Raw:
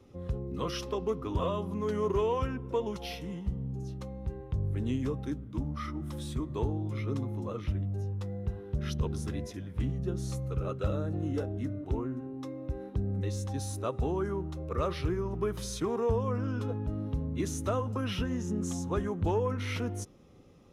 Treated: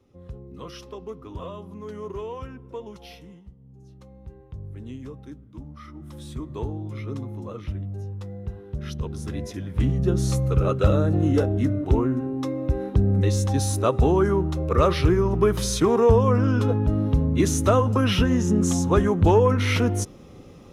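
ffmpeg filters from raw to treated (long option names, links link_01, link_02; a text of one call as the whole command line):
ffmpeg -i in.wav -af "volume=24.5dB,afade=type=out:start_time=3.19:duration=0.37:silence=0.237137,afade=type=in:start_time=3.56:duration=0.6:silence=0.266073,afade=type=in:start_time=5.85:duration=0.61:silence=0.446684,afade=type=in:start_time=9.14:duration=1.04:silence=0.281838" out.wav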